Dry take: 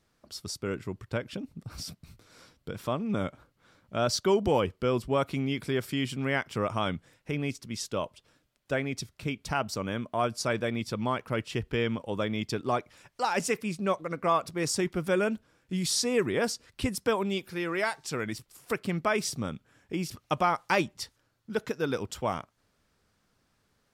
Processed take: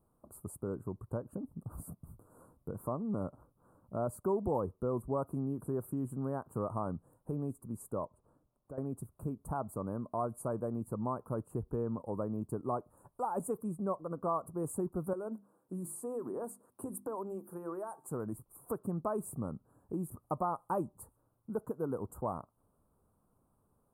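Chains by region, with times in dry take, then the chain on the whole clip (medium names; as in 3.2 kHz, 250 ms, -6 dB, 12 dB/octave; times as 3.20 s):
8.05–8.78 s: compression 2.5:1, threshold -48 dBFS + treble shelf 5.8 kHz -10.5 dB
15.13–18.09 s: high-pass 240 Hz + compression 4:1, threshold -31 dBFS + hum notches 50/100/150/200/250/300/350 Hz
whole clip: elliptic band-stop 1.1–9.4 kHz, stop band 40 dB; compression 1.5:1, threshold -41 dBFS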